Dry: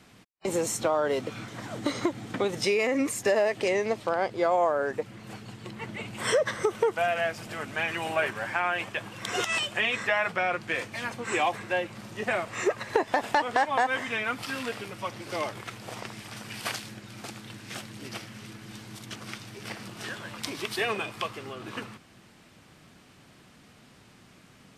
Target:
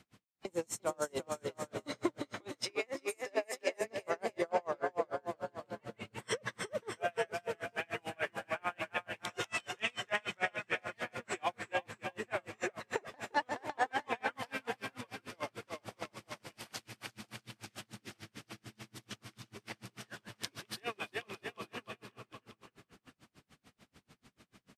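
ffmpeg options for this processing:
-filter_complex "[0:a]asettb=1/sr,asplit=3[a][b][c];[a]atrim=end=2.144[d];[b]atrim=start=2.14:end=3.81,asetpts=PTS-STARTPTS,afade=t=in:d=0.004:c=qsin,afade=t=out:st=1.666:d=0.004:c=qsin,highpass=430[e];[c]atrim=start=3.806[f];[d][e]acrossfade=d=0.004:c1=hsin:c2=qsin[g];[g][f]acrossfade=d=0.004:c1=qsin:c2=hsin,aecho=1:1:350|647.5|900.4|1115|1298:0.631|0.398|0.251|0.158|0.1,aeval=exprs='val(0)*pow(10,-36*(0.5-0.5*cos(2*PI*6.8*n/s))/20)':c=same,volume=-5dB"

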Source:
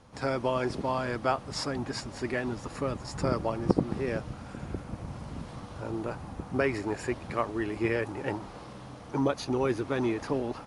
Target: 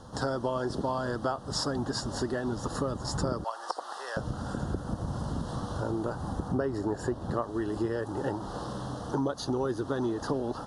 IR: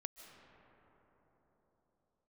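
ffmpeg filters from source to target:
-filter_complex "[0:a]asettb=1/sr,asplit=3[a][b][c];[a]atrim=end=3.444[d];[b]atrim=start=3.44:end=4.17,asetpts=PTS-STARTPTS,afade=t=in:d=0.004:c=qsin,afade=t=out:st=0.726:d=0.004:c=qsin,highpass=f=780:w=0.5412,highpass=f=780:w=1.3066[e];[c]atrim=start=4.166[f];[d][e]acrossfade=d=0.004:c1=hsin:c2=qsin[g];[g][f]acrossfade=d=0.004:c1=qsin:c2=hsin,asettb=1/sr,asplit=3[h][i][j];[h]atrim=end=6.484[k];[i]atrim=start=6.48:end=7.42,asetpts=PTS-STARTPTS,afade=t=in:d=0.004:c=qsin,afade=t=out:st=0.936:d=0.004:c=qsin,tiltshelf=f=1.3k:g=3.5[l];[j]atrim=start=7.416[m];[k][l]acrossfade=d=0.004:c1=hsin:c2=qsin[n];[n][m]acrossfade=d=0.004:c1=qsin:c2=hsin,acompressor=threshold=-37dB:ratio=4,asuperstop=centerf=2300:order=4:qfactor=1.5,volume=8.5dB"

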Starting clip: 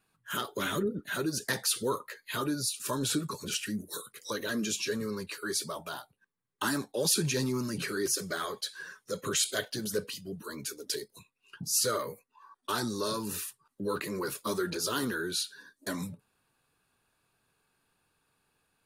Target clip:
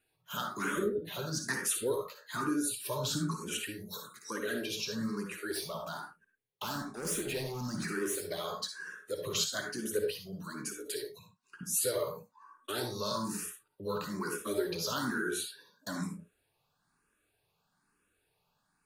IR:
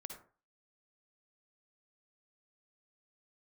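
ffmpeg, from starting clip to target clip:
-filter_complex "[0:a]asettb=1/sr,asplit=3[a][b][c];[a]atrim=end=5.514[d];[b]atrim=start=5.51:end=8.23,asetpts=PTS-STARTPTS,afade=t=in:d=0.004:c=qsin,afade=t=out:st=2.716:d=0.004:c=qsin,asoftclip=type=hard:threshold=-29.5dB[e];[c]atrim=start=8.226[f];[d][e]acrossfade=d=0.004:c1=hsin:c2=qsin[g];[g][f]acrossfade=d=0.004:c1=qsin:c2=hsin[h];[1:a]atrim=start_sample=2205,atrim=end_sample=6174[i];[h][i]afir=irnorm=-1:irlink=0,asplit=2[j][k];[k]afreqshift=1.1[l];[j][l]amix=inputs=2:normalize=1,volume=5dB"

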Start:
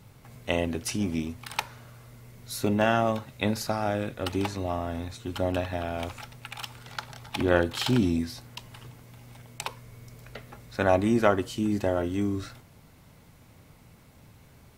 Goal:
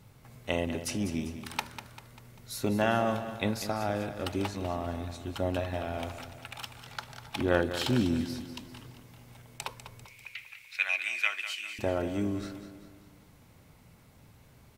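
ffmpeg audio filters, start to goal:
-filter_complex "[0:a]asettb=1/sr,asplit=3[a][b][c];[a]atrim=end=10.054[d];[b]atrim=start=10.05:end=11.79,asetpts=PTS-STARTPTS,afade=t=in:d=0.004:c=qsin,afade=t=out:st=1.736:d=0.004:c=qsin,highpass=f=2.4k:t=q:w=8.2[e];[c]atrim=start=11.786[f];[d][e]acrossfade=d=0.004:c1=hsin:c2=qsin[g];[g][f]acrossfade=d=0.004:c1=qsin:c2=hsin,asplit=2[h][i];[i]aecho=0:1:197|394|591|788|985:0.282|0.138|0.0677|0.0332|0.0162[j];[h][j]amix=inputs=2:normalize=0,volume=-3.5dB"

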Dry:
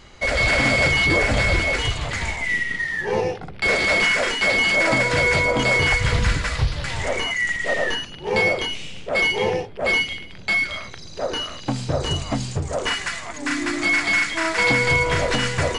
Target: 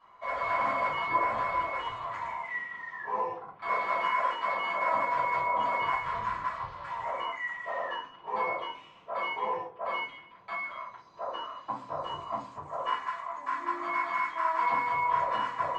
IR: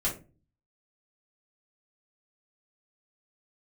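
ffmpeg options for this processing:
-filter_complex "[0:a]bandpass=f=1k:t=q:w=9.4:csg=0[a];[1:a]atrim=start_sample=2205,asetrate=41454,aresample=44100[b];[a][b]afir=irnorm=-1:irlink=0"

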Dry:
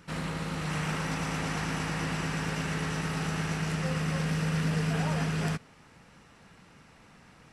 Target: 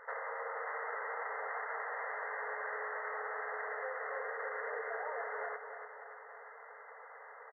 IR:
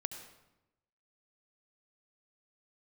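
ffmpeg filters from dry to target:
-filter_complex "[0:a]afftfilt=real='re*between(b*sr/4096,410,2100)':imag='im*between(b*sr/4096,410,2100)':win_size=4096:overlap=0.75,acompressor=threshold=-45dB:ratio=6,asplit=2[a][b];[b]aecho=0:1:290|580|870|1160|1450|1740:0.398|0.203|0.104|0.0528|0.0269|0.0137[c];[a][c]amix=inputs=2:normalize=0,volume=6.5dB"

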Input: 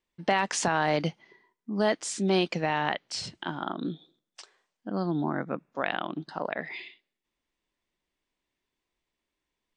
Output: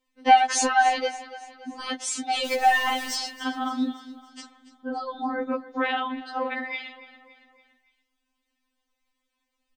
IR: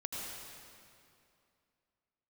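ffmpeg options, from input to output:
-filter_complex "[0:a]asettb=1/sr,asplit=3[a][b][c];[a]atrim=end=2.454[d];[b]atrim=start=2.45:end=3.15,asetpts=PTS-STARTPTS,afade=t=in:d=0.004:c=qsin,afade=t=out:st=0.696:d=0.004:c=qsin,aeval=exprs='val(0)+0.5*0.02*sgn(val(0))':c=same[e];[c]atrim=start=3.146[f];[d][e]acrossfade=d=0.004:c1=hsin:c2=qsin[g];[g][f]acrossfade=d=0.004:c1=qsin:c2=hsin,aecho=1:1:283|566|849|1132:0.15|0.0733|0.0359|0.0176,afftfilt=real='re*3.46*eq(mod(b,12),0)':imag='im*3.46*eq(mod(b,12),0)':win_size=2048:overlap=0.75,volume=7dB"

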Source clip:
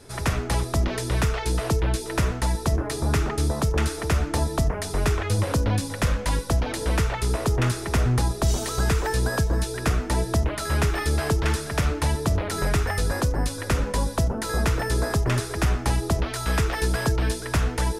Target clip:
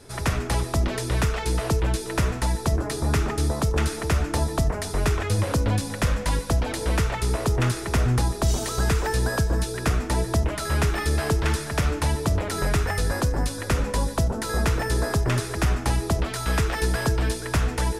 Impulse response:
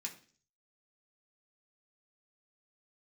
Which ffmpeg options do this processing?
-filter_complex "[0:a]asplit=2[a][b];[1:a]atrim=start_sample=2205,adelay=145[c];[b][c]afir=irnorm=-1:irlink=0,volume=-14dB[d];[a][d]amix=inputs=2:normalize=0"

